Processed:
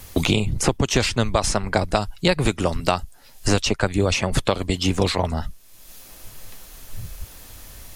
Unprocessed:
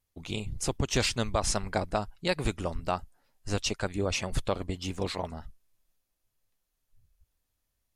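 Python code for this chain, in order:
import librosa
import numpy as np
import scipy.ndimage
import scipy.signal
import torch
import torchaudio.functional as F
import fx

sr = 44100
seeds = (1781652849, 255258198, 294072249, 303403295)

y = fx.band_squash(x, sr, depth_pct=100)
y = y * 10.0 ** (9.0 / 20.0)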